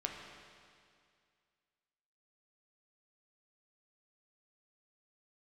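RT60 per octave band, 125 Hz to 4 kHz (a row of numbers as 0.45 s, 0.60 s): 2.2 s, 2.2 s, 2.2 s, 2.2 s, 2.2 s, 2.2 s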